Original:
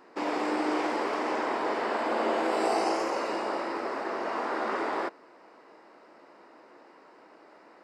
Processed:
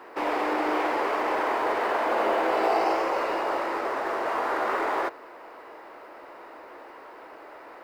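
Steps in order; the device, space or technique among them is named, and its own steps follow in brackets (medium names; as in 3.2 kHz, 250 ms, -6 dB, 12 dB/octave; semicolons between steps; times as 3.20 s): phone line with mismatched companding (band-pass 390–3200 Hz; companding laws mixed up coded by mu); trim +3.5 dB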